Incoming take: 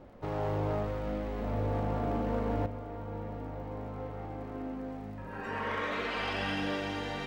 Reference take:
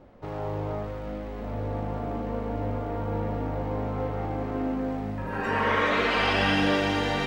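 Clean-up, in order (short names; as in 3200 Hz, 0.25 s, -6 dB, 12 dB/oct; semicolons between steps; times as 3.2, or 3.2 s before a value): clip repair -25 dBFS; de-click; gain 0 dB, from 2.66 s +10 dB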